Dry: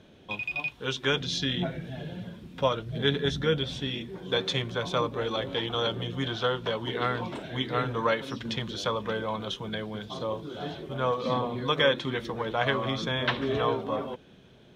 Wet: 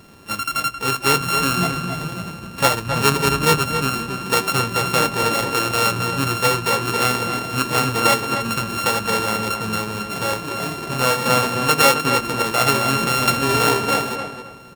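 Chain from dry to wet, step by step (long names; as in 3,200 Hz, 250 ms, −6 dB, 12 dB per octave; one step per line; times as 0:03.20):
samples sorted by size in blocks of 32 samples
feedback echo with a low-pass in the loop 267 ms, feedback 26%, low-pass 2,900 Hz, level −7 dB
pitch-shifted copies added −4 semitones −17 dB, +12 semitones −15 dB
level +8 dB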